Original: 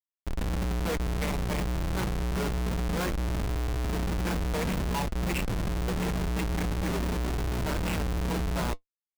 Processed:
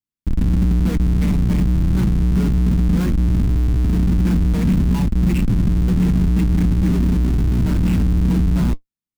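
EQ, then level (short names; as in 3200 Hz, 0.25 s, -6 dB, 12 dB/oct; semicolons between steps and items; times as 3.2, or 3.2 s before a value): resonant low shelf 360 Hz +13 dB, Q 1.5; 0.0 dB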